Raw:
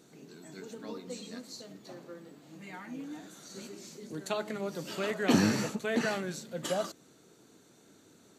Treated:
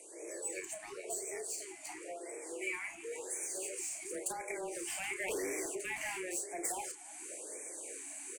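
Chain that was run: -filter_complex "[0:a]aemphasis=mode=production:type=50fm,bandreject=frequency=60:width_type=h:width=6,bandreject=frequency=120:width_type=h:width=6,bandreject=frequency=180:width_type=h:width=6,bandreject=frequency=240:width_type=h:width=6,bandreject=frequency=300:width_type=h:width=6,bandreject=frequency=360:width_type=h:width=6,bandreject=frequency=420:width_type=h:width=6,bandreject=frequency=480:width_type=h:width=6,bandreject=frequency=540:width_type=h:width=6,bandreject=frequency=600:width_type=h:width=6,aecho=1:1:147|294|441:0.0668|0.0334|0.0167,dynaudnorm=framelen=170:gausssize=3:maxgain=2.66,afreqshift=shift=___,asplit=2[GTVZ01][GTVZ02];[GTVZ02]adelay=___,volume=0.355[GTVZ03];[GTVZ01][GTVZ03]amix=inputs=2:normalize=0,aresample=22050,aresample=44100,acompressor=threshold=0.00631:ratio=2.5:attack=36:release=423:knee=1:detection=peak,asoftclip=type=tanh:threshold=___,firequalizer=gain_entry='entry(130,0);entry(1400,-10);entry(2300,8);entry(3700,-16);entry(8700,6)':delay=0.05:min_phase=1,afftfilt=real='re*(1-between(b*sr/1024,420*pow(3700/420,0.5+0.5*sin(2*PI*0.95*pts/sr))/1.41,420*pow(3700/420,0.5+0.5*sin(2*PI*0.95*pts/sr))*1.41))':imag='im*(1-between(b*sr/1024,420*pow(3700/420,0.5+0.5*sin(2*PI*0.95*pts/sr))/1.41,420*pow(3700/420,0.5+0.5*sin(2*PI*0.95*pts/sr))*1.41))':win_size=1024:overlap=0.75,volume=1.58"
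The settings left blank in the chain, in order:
180, 32, 0.0188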